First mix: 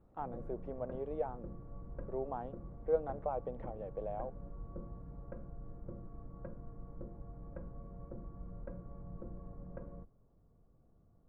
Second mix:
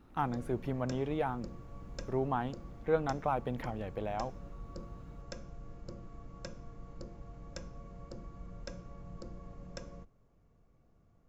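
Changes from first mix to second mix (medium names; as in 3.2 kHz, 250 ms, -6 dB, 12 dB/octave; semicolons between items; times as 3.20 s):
speech: remove band-pass filter 540 Hz, Q 2.5; background: remove Gaussian low-pass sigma 6.7 samples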